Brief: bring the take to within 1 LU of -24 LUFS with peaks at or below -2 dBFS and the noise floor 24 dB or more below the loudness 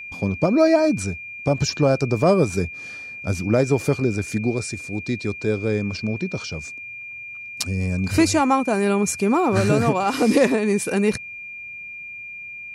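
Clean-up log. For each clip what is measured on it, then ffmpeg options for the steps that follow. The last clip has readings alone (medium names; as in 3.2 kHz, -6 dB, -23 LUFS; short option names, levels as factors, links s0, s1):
steady tone 2.4 kHz; tone level -33 dBFS; loudness -21.0 LUFS; peak level -5.5 dBFS; loudness target -24.0 LUFS
-> -af "bandreject=f=2400:w=30"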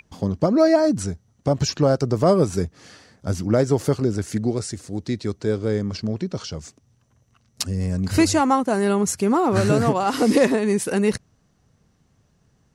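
steady tone not found; loudness -21.5 LUFS; peak level -5.5 dBFS; loudness target -24.0 LUFS
-> -af "volume=0.75"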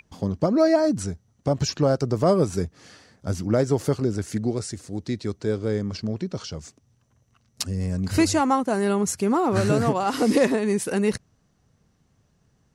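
loudness -24.0 LUFS; peak level -8.0 dBFS; noise floor -66 dBFS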